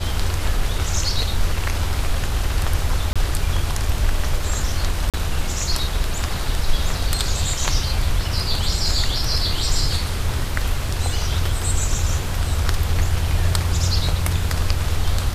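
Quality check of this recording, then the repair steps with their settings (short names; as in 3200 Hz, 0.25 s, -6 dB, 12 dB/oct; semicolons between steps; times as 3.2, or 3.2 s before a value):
3.13–3.16 gap 26 ms
5.1–5.14 gap 37 ms
10.89 gap 3 ms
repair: interpolate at 3.13, 26 ms; interpolate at 5.1, 37 ms; interpolate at 10.89, 3 ms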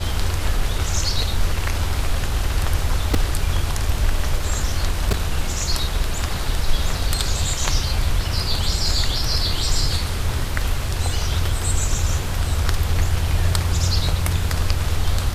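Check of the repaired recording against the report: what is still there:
none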